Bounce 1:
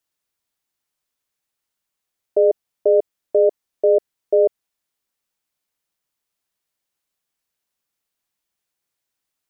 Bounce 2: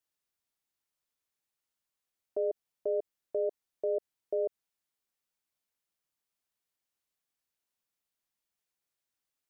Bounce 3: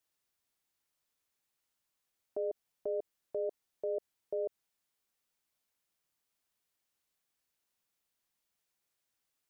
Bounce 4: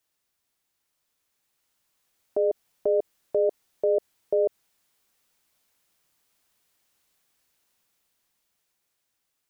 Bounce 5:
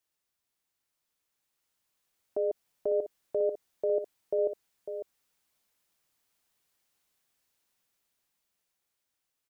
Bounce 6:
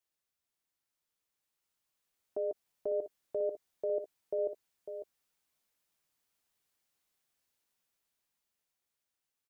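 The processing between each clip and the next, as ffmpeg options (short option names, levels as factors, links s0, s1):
-af "alimiter=limit=0.158:level=0:latency=1:release=64,volume=0.422"
-af "alimiter=level_in=2.37:limit=0.0631:level=0:latency=1:release=13,volume=0.422,volume=1.5"
-af "dynaudnorm=f=400:g=9:m=2.24,volume=1.88"
-af "aecho=1:1:550:0.355,volume=0.501"
-filter_complex "[0:a]asplit=2[s0][s1];[s1]adelay=13,volume=0.224[s2];[s0][s2]amix=inputs=2:normalize=0,volume=0.562"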